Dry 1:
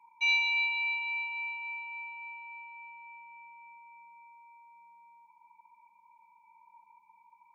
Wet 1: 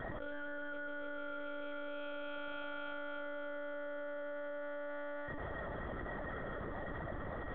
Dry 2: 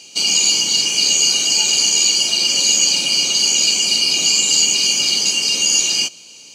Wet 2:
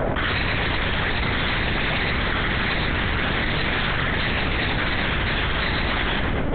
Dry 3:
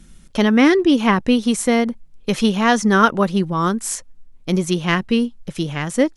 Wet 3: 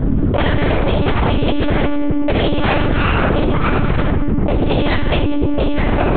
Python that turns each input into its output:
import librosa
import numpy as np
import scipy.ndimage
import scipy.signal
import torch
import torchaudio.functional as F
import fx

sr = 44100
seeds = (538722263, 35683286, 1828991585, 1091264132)

y = fx.octave_divider(x, sr, octaves=2, level_db=2.0)
y = np.abs(y)
y = scipy.signal.sosfilt(scipy.signal.butter(2, 120.0, 'highpass', fs=sr, output='sos'), y)
y = fx.room_early_taps(y, sr, ms=(44, 76), db=(-11.5, -14.5))
y = fx.env_lowpass(y, sr, base_hz=590.0, full_db=-15.0)
y = fx.room_shoebox(y, sr, seeds[0], volume_m3=3400.0, walls='furnished', distance_m=6.6)
y = fx.lpc_monotone(y, sr, seeds[1], pitch_hz=290.0, order=8)
y = fx.env_flatten(y, sr, amount_pct=100)
y = y * librosa.db_to_amplitude(-7.5)